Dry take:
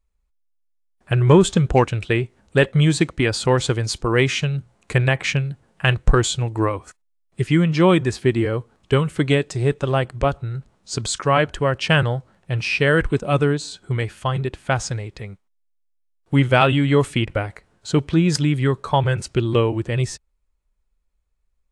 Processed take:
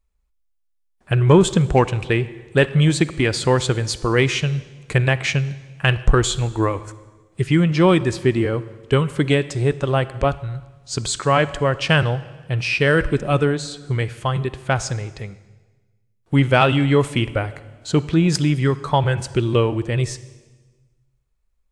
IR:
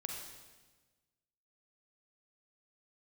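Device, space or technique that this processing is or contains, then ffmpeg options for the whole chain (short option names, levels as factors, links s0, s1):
saturated reverb return: -filter_complex "[0:a]asplit=2[s0][s1];[1:a]atrim=start_sample=2205[s2];[s1][s2]afir=irnorm=-1:irlink=0,asoftclip=type=tanh:threshold=0.224,volume=0.335[s3];[s0][s3]amix=inputs=2:normalize=0,asettb=1/sr,asplit=3[s4][s5][s6];[s4]atrim=end=10.354[s7];[s5]atrim=start=10.35:end=10.97,asetpts=PTS-STARTPTS,afade=t=in:d=0.004:c=qsin,afade=t=out:st=0.616:d=0.004:c=qsin,equalizer=f=350:t=o:w=1.9:g=-7[s8];[s6]atrim=start=10.966[s9];[s7][s8]acrossfade=d=0.004:c1=hsin:c2=qsin[s10];[s10][s9]acrossfade=d=0.004:c1=qsin:c2=hsin,volume=0.891"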